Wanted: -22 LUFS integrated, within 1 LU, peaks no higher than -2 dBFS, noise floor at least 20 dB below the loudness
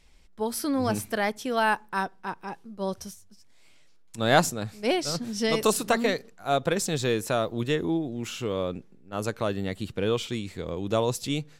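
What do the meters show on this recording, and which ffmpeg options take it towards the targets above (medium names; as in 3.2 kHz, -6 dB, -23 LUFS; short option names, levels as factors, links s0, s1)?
loudness -27.5 LUFS; peak level -6.5 dBFS; loudness target -22.0 LUFS
-> -af "volume=1.88,alimiter=limit=0.794:level=0:latency=1"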